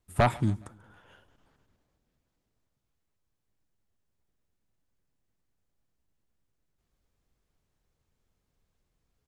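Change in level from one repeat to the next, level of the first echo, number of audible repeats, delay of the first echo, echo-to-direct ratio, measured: -6.5 dB, -24.0 dB, 2, 0.138 s, -23.0 dB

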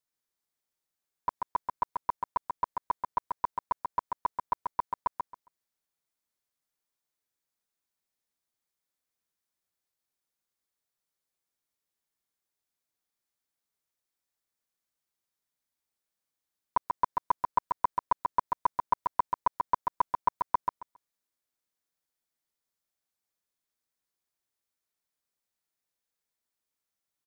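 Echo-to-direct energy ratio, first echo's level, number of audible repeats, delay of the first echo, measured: -4.0 dB, -4.0 dB, 3, 0.136 s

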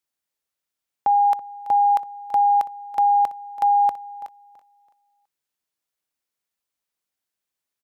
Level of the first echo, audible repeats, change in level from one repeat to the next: -17.0 dB, 2, -10.0 dB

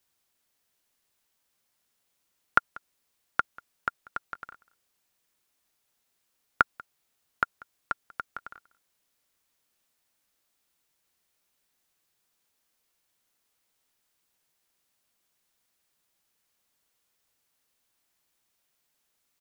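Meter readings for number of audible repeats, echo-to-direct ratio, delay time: 1, -23.0 dB, 0.19 s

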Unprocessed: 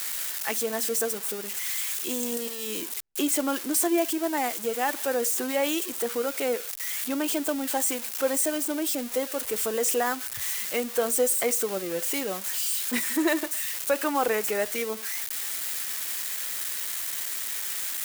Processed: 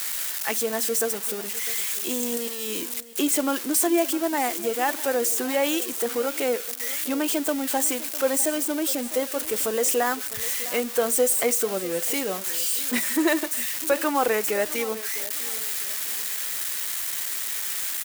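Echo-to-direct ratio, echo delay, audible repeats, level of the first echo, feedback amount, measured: -16.5 dB, 0.654 s, 2, -17.0 dB, 32%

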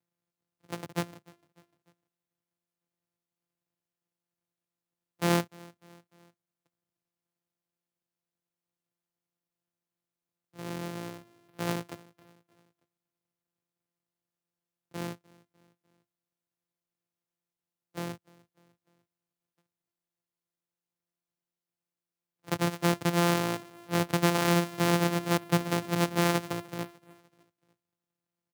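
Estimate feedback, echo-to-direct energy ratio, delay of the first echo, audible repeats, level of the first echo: 52%, -22.5 dB, 0.299 s, 2, -24.0 dB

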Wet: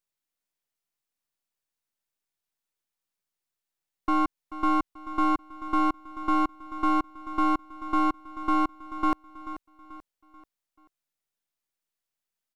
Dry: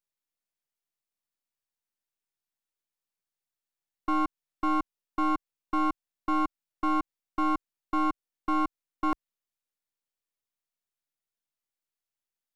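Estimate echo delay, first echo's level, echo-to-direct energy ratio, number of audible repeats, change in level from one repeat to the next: 0.436 s, -13.5 dB, -12.5 dB, 3, -7.5 dB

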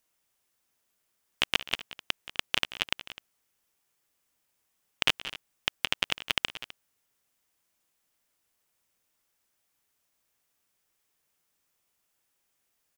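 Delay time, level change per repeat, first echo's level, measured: 0.176 s, no steady repeat, -16.5 dB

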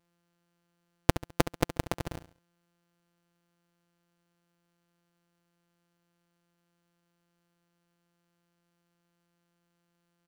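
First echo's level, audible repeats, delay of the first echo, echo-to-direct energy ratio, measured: -13.0 dB, 3, 69 ms, -12.5 dB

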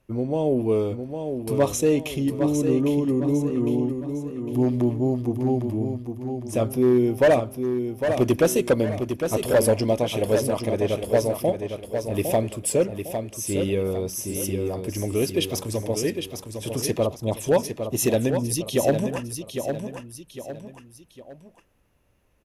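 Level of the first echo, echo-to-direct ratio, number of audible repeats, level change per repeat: -7.0 dB, -6.5 dB, 3, -8.0 dB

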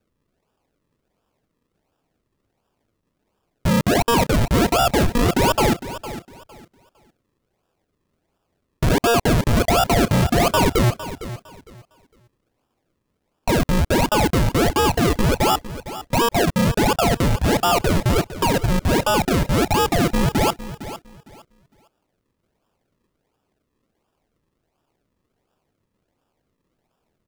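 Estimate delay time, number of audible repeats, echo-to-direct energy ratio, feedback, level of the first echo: 0.457 s, 2, -13.5 dB, 23%, -14.0 dB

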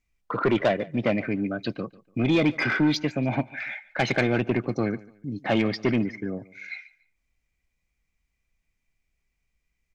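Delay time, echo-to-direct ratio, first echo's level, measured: 0.145 s, -21.0 dB, -21.5 dB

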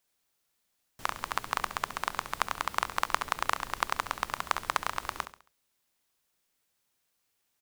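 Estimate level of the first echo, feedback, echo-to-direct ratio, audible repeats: -12.0 dB, 39%, -11.5 dB, 3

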